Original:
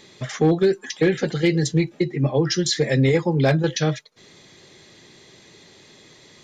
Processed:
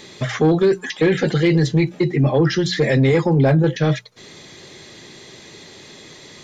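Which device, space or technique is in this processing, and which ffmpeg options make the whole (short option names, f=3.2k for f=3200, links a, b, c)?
soft clipper into limiter: -filter_complex "[0:a]asplit=3[a][b][c];[a]afade=t=out:st=3.37:d=0.02[d];[b]equalizer=f=4.8k:w=0.49:g=-11,afade=t=in:st=3.37:d=0.02,afade=t=out:st=3.83:d=0.02[e];[c]afade=t=in:st=3.83:d=0.02[f];[d][e][f]amix=inputs=3:normalize=0,asoftclip=type=tanh:threshold=-10dB,alimiter=limit=-17dB:level=0:latency=1:release=12,acrossover=split=3900[g][h];[h]acompressor=threshold=-47dB:ratio=4:attack=1:release=60[i];[g][i]amix=inputs=2:normalize=0,bandreject=f=60:t=h:w=6,bandreject=f=120:t=h:w=6,bandreject=f=180:t=h:w=6,volume=8dB"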